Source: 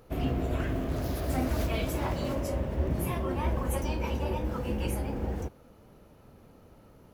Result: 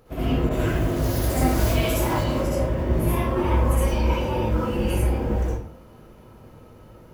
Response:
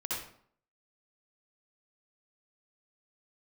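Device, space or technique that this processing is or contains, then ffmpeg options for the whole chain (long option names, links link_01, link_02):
bathroom: -filter_complex "[1:a]atrim=start_sample=2205[link_01];[0:a][link_01]afir=irnorm=-1:irlink=0,asettb=1/sr,asplit=3[link_02][link_03][link_04];[link_02]atrim=end=0.494[link_05];[link_03]atrim=start=0.49:end=2.24,asetpts=PTS-STARTPTS,afade=type=in:duration=0.004:curve=qsin,afade=type=out:start_time=1.746:duration=0.004:curve=qsin,adynamicequalizer=threshold=0.00282:dfrequency=4400:dqfactor=0.7:tfrequency=4400:tqfactor=0.7:attack=5:release=100:ratio=0.375:range=3.5:mode=boostabove:tftype=highshelf[link_06];[link_04]atrim=start=2.236[link_07];[link_05][link_06]acrossfade=duration=0.004:curve1=hsin:curve2=qsin[link_08];[link_08][link_07]acrossfade=duration=0.004:curve1=qsin:curve2=hsin,volume=4dB"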